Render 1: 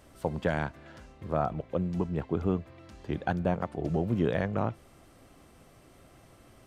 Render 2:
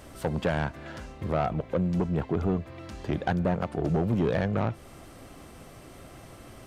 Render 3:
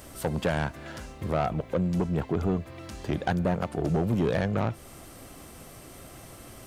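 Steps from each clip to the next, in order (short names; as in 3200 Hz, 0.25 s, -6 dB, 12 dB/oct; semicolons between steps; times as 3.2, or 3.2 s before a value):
in parallel at 0 dB: compressor, threshold -35 dBFS, peak gain reduction 13 dB; on the sum: soft clip -21.5 dBFS, distortion -12 dB; gain +3 dB
high shelf 6400 Hz +11 dB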